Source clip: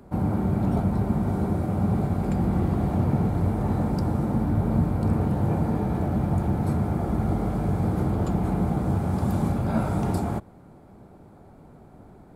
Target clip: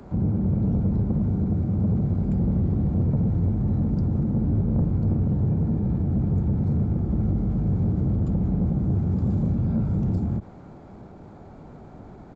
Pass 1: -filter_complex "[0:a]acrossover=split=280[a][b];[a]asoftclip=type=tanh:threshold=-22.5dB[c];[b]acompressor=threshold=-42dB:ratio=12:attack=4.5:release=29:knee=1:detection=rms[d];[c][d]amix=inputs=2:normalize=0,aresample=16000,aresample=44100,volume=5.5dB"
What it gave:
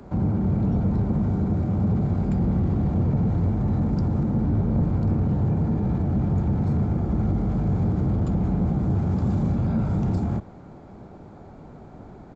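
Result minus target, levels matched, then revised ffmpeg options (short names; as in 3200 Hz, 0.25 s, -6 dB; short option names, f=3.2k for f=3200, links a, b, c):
compressor: peak gain reduction -8.5 dB
-filter_complex "[0:a]acrossover=split=280[a][b];[a]asoftclip=type=tanh:threshold=-22.5dB[c];[b]acompressor=threshold=-51.5dB:ratio=12:attack=4.5:release=29:knee=1:detection=rms[d];[c][d]amix=inputs=2:normalize=0,aresample=16000,aresample=44100,volume=5.5dB"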